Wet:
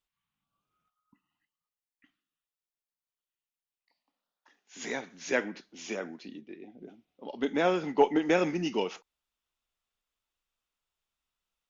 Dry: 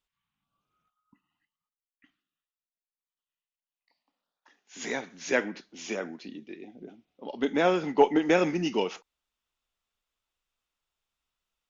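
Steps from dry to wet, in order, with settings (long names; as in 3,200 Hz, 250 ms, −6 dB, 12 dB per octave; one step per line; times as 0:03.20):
0:06.40–0:06.81: low-pass filter 1,900 Hz → 3,300 Hz 6 dB per octave
level −2.5 dB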